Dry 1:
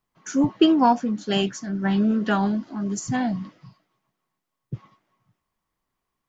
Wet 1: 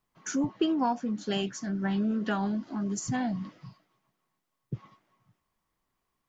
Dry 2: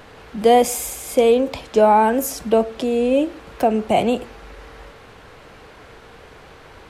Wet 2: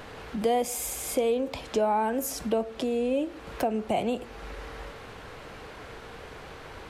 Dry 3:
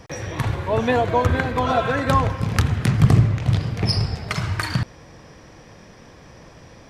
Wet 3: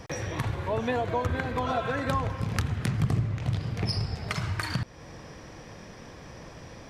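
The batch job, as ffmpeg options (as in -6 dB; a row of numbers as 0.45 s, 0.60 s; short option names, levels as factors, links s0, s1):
-af "acompressor=threshold=0.0251:ratio=2"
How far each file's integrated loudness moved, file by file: -8.0 LU, -10.5 LU, -9.0 LU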